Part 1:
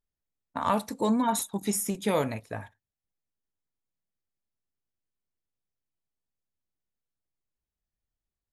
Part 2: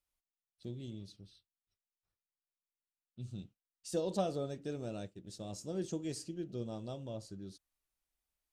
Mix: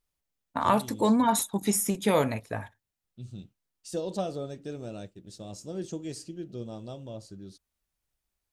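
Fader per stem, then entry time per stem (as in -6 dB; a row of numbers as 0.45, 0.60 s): +2.5, +2.5 dB; 0.00, 0.00 s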